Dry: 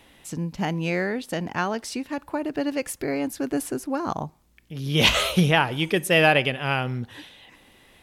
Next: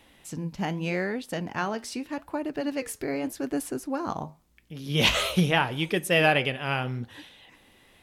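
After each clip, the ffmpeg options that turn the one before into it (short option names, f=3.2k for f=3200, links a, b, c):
-af "flanger=delay=3.6:depth=6.9:regen=-78:speed=0.83:shape=sinusoidal,volume=1dB"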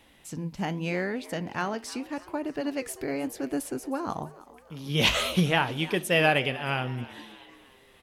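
-filter_complex "[0:a]asplit=5[a][b][c][d][e];[b]adelay=311,afreqshift=91,volume=-19dB[f];[c]adelay=622,afreqshift=182,volume=-25.2dB[g];[d]adelay=933,afreqshift=273,volume=-31.4dB[h];[e]adelay=1244,afreqshift=364,volume=-37.6dB[i];[a][f][g][h][i]amix=inputs=5:normalize=0,volume=-1dB"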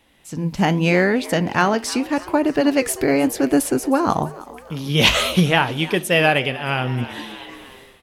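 -af "dynaudnorm=f=260:g=3:m=15.5dB,volume=-1dB"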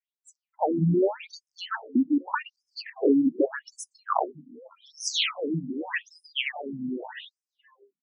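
-af "bandreject=f=50:t=h:w=6,bandreject=f=100:t=h:w=6,bandreject=f=150:t=h:w=6,afftdn=nr=35:nf=-33,afftfilt=real='re*between(b*sr/1024,210*pow(7200/210,0.5+0.5*sin(2*PI*0.84*pts/sr))/1.41,210*pow(7200/210,0.5+0.5*sin(2*PI*0.84*pts/sr))*1.41)':imag='im*between(b*sr/1024,210*pow(7200/210,0.5+0.5*sin(2*PI*0.84*pts/sr))/1.41,210*pow(7200/210,0.5+0.5*sin(2*PI*0.84*pts/sr))*1.41)':win_size=1024:overlap=0.75"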